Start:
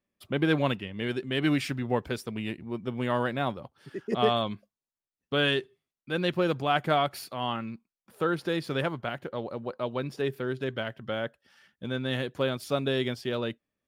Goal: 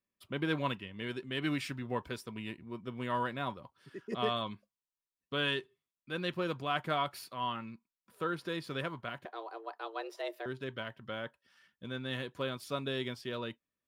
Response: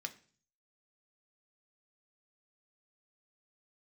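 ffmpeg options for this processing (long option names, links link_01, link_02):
-filter_complex "[0:a]asettb=1/sr,asplit=3[link_01][link_02][link_03];[link_01]atrim=end=9.254[link_04];[link_02]atrim=start=9.25:end=10.46,asetpts=PTS-STARTPTS,afade=type=in:duration=0.004:curve=qsin,afade=type=out:start_time=1.206:duration=0.004:curve=qsin,afreqshift=220[link_05];[link_03]atrim=start=10.456[link_06];[link_04][link_05]acrossfade=duration=0.004:curve1=hsin:curve2=qsin[link_07];[link_07][link_06]acrossfade=duration=0.004:curve1=qsin:curve2=hsin,asplit=2[link_08][link_09];[link_09]highpass=frequency=950:width_type=q:width=9.5[link_10];[1:a]atrim=start_sample=2205,atrim=end_sample=3087,asetrate=66150,aresample=44100[link_11];[link_10][link_11]afir=irnorm=-1:irlink=0,volume=-4.5dB[link_12];[link_08][link_12]amix=inputs=2:normalize=0,volume=-8.5dB"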